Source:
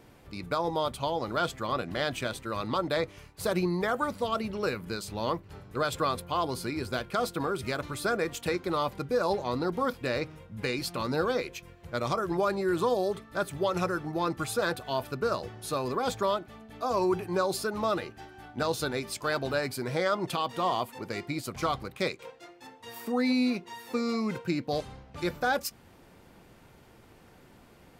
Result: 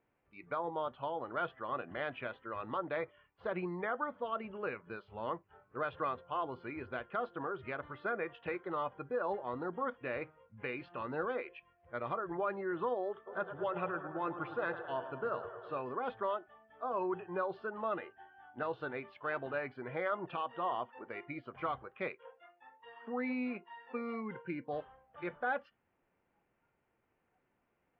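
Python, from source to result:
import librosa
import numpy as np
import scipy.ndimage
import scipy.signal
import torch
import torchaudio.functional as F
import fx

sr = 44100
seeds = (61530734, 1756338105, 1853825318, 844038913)

y = fx.echo_filtered(x, sr, ms=108, feedback_pct=74, hz=4200.0, wet_db=-10.5, at=(13.26, 15.81), fade=0.02)
y = fx.notch_comb(y, sr, f0_hz=640.0, at=(24.22, 24.68))
y = fx.noise_reduce_blind(y, sr, reduce_db=14)
y = scipy.signal.sosfilt(scipy.signal.butter(6, 2700.0, 'lowpass', fs=sr, output='sos'), y)
y = fx.low_shelf(y, sr, hz=310.0, db=-8.5)
y = y * librosa.db_to_amplitude(-6.0)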